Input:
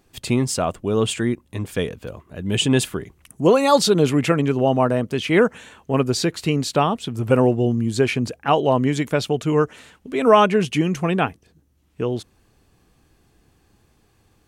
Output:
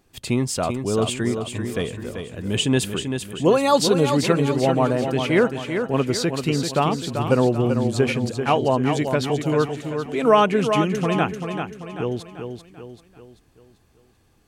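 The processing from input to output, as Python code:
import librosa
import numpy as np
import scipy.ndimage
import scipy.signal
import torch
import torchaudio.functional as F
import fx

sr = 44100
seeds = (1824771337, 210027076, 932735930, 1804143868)

y = fx.echo_feedback(x, sr, ms=389, feedback_pct=46, wet_db=-7.0)
y = y * 10.0 ** (-2.0 / 20.0)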